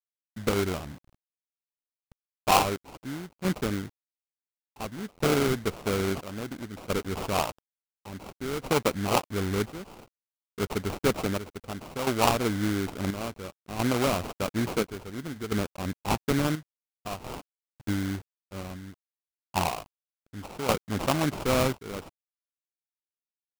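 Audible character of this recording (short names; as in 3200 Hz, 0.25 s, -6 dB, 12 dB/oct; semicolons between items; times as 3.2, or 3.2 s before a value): a quantiser's noise floor 8-bit, dither none; chopped level 0.58 Hz, depth 65%, duty 60%; aliases and images of a low sample rate 1800 Hz, jitter 20%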